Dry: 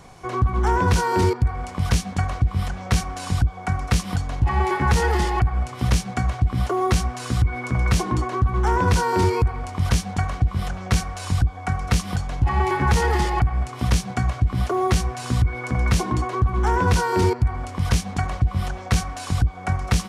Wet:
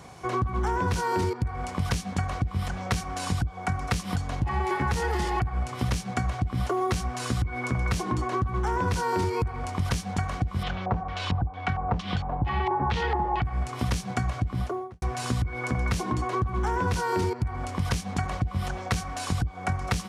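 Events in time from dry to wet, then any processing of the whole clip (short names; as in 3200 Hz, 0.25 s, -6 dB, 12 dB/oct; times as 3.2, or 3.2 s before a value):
10.63–13.44 LFO low-pass square 2.2 Hz 860–3400 Hz
14.4–15.02 studio fade out
whole clip: HPF 58 Hz; compressor, threshold -23 dBFS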